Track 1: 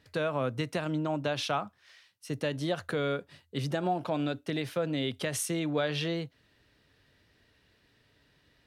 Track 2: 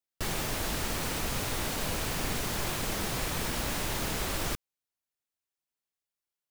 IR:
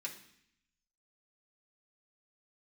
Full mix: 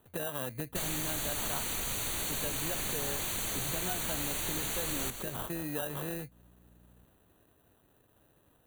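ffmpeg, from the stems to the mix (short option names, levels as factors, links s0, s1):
-filter_complex "[0:a]acrusher=samples=20:mix=1:aa=0.000001,aexciter=amount=4:drive=5.5:freq=9500,volume=0.891[s0];[1:a]highshelf=f=2900:g=10.5,aeval=exprs='val(0)+0.00112*(sin(2*PI*60*n/s)+sin(2*PI*2*60*n/s)/2+sin(2*PI*3*60*n/s)/3+sin(2*PI*4*60*n/s)/4+sin(2*PI*5*60*n/s)/5)':c=same,adelay=550,volume=1,asplit=2[s1][s2];[s2]volume=0.266,aecho=0:1:128|256|384|512|640|768|896|1024:1|0.56|0.314|0.176|0.0983|0.0551|0.0308|0.0173[s3];[s0][s1][s3]amix=inputs=3:normalize=0,asuperstop=centerf=5200:order=12:qfactor=4.3,acompressor=threshold=0.0126:ratio=2"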